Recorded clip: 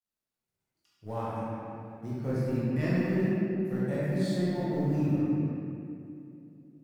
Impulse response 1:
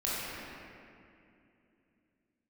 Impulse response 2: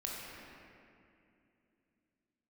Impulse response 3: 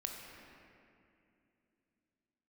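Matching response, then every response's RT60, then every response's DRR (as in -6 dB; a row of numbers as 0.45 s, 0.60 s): 1; 2.6 s, 2.6 s, 2.7 s; -9.0 dB, -4.0 dB, 1.0 dB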